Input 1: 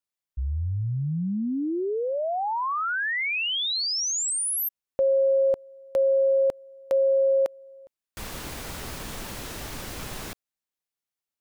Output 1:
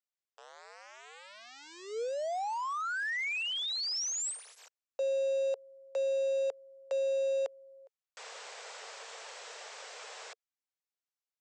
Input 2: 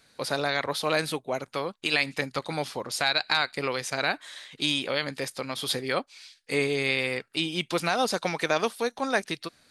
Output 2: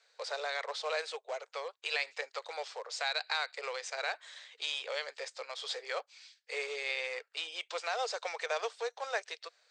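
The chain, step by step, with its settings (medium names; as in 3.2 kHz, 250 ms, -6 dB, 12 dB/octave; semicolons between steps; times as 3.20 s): in parallel at -12 dB: integer overflow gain 24 dB; on the sum: Chebyshev band-pass 450–7900 Hz, order 5; trim -8.5 dB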